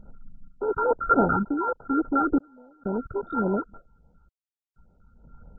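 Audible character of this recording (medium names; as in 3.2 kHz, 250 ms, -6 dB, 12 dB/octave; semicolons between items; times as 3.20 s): a buzz of ramps at a fixed pitch in blocks of 32 samples; random-step tremolo 2.1 Hz, depth 100%; phasing stages 8, 3.5 Hz, lowest notch 540–2000 Hz; MP2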